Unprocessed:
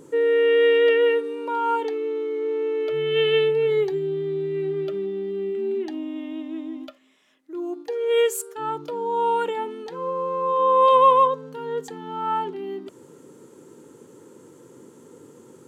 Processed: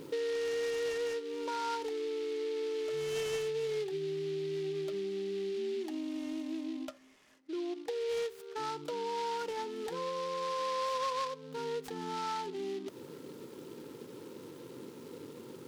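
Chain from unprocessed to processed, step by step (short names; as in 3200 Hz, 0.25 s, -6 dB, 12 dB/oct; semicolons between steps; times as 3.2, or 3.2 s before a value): 6.64–8.81 LPF 3400 Hz 12 dB/oct; compressor 4:1, threshold -36 dBFS, peak gain reduction 20.5 dB; noise-modulated delay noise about 3100 Hz, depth 0.047 ms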